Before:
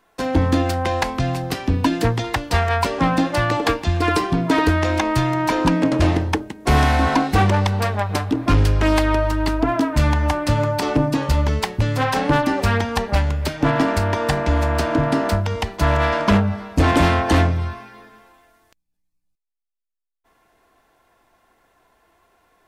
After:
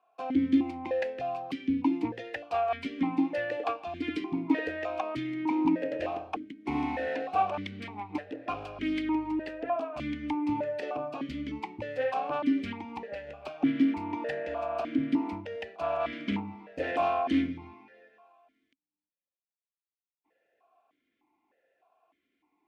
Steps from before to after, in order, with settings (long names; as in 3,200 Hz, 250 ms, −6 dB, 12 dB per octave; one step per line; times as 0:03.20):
0:12.71–0:13.29: downward compressor, threshold −18 dBFS, peak gain reduction 5.5 dB
formant filter that steps through the vowels 3.3 Hz
level −1.5 dB